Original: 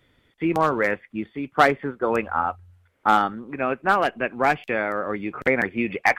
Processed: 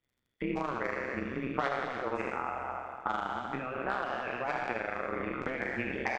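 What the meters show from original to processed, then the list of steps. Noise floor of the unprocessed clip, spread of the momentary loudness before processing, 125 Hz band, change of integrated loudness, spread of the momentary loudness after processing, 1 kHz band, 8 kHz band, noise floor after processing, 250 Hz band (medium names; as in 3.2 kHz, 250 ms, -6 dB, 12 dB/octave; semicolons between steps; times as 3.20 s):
-64 dBFS, 9 LU, -8.5 dB, -11.5 dB, 3 LU, -12.0 dB, no reading, -82 dBFS, -10.5 dB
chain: spectral sustain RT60 1.34 s; compression 4:1, threshold -29 dBFS, peak gain reduction 17 dB; low-pass 7.2 kHz 24 dB/octave; gate with hold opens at -45 dBFS; crackle 87 per s -60 dBFS; AM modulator 130 Hz, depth 85%; loudspeakers at several distances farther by 27 m -10 dB, 98 m -12 dB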